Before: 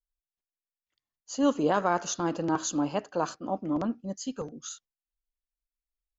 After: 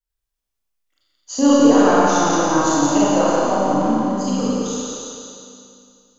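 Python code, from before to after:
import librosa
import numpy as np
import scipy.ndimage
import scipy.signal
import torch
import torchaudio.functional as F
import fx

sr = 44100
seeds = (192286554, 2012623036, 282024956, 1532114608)

y = fx.transient(x, sr, attack_db=8, sustain_db=-1)
y = fx.echo_split(y, sr, split_hz=390.0, low_ms=92, high_ms=173, feedback_pct=52, wet_db=-5)
y = fx.rev_schroeder(y, sr, rt60_s=2.3, comb_ms=28, drr_db=-8.5)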